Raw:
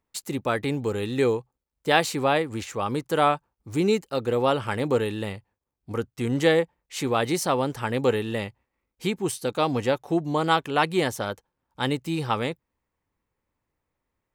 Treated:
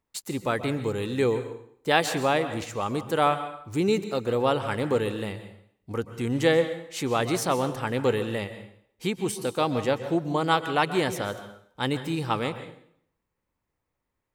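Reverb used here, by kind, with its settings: plate-style reverb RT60 0.65 s, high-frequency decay 0.9×, pre-delay 0.115 s, DRR 10.5 dB; gain -1.5 dB

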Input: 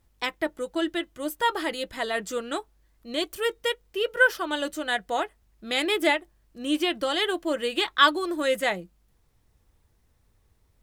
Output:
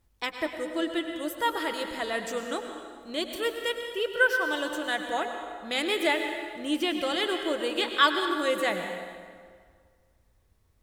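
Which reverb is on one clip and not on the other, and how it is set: plate-style reverb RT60 1.9 s, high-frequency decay 0.75×, pre-delay 90 ms, DRR 5 dB; gain -3 dB

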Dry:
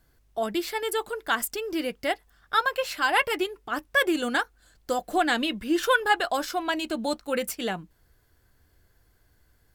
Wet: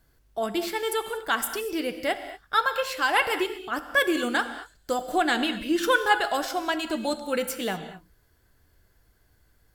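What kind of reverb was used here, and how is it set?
non-linear reverb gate 0.26 s flat, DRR 9 dB

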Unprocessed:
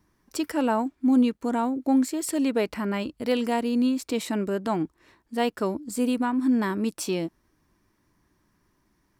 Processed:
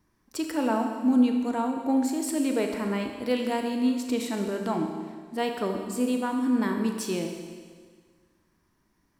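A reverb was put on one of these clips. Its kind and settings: Schroeder reverb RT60 1.7 s, combs from 28 ms, DRR 3.5 dB; gain -3 dB

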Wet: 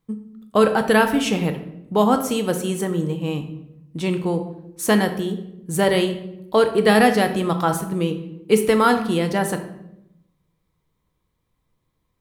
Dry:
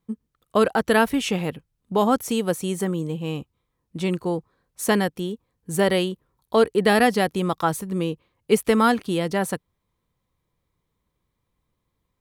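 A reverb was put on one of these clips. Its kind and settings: shoebox room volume 240 m³, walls mixed, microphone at 0.54 m; gain +1.5 dB

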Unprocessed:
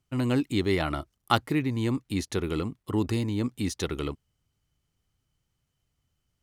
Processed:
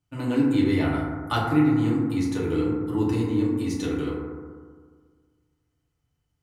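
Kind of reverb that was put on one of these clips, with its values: FDN reverb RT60 1.7 s, low-frequency decay 1.1×, high-frequency decay 0.25×, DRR -7 dB; gain -7 dB

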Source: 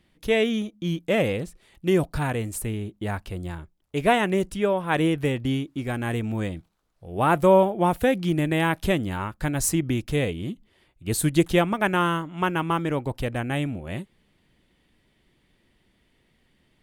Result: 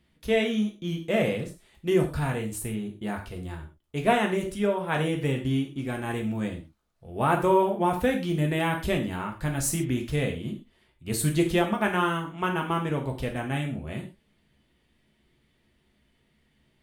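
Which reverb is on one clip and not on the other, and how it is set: non-linear reverb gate 0.15 s falling, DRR 1.5 dB; gain -5 dB

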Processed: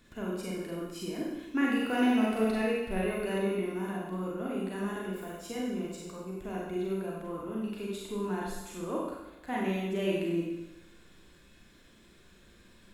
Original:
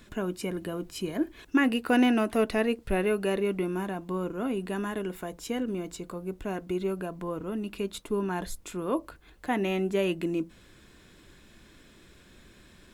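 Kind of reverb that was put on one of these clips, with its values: Schroeder reverb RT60 0.98 s, combs from 32 ms, DRR -4 dB; gain -9 dB

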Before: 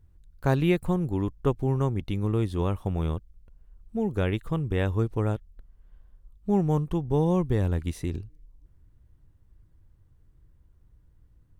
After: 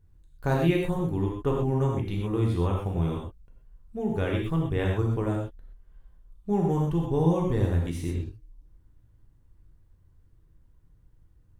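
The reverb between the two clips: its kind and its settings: non-linear reverb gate 0.15 s flat, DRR -1.5 dB; gain -3.5 dB

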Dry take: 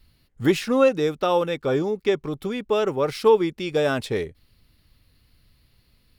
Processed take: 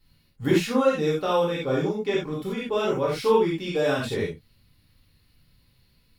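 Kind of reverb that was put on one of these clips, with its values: non-linear reverb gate 0.11 s flat, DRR -6 dB; gain -8 dB

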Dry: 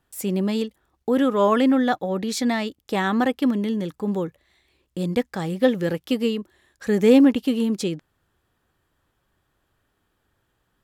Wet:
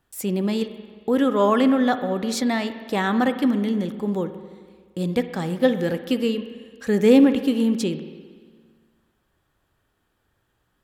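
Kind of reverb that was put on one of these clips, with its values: spring tank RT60 1.7 s, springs 44/57 ms, chirp 30 ms, DRR 10 dB

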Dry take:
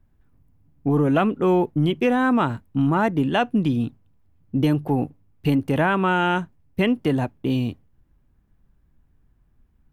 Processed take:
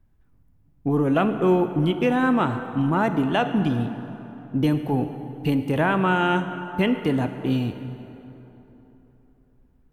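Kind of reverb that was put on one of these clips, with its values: plate-style reverb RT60 3.5 s, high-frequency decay 0.6×, DRR 8 dB; gain -1.5 dB

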